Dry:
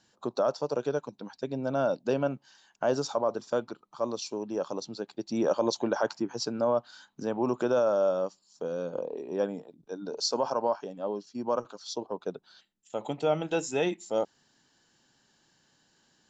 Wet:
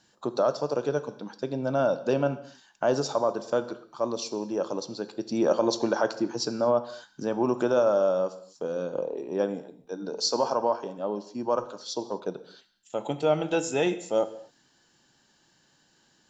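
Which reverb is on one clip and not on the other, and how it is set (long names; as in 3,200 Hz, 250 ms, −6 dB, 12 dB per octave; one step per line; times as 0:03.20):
reverb whose tail is shaped and stops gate 280 ms falling, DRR 11 dB
level +2.5 dB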